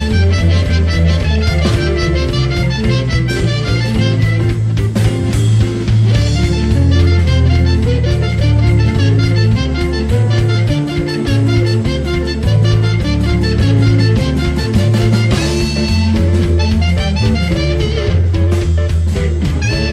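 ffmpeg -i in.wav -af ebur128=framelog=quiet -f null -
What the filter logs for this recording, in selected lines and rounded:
Integrated loudness:
  I:         -13.2 LUFS
  Threshold: -23.2 LUFS
Loudness range:
  LRA:         2.0 LU
  Threshold: -33.2 LUFS
  LRA low:   -14.1 LUFS
  LRA high:  -12.1 LUFS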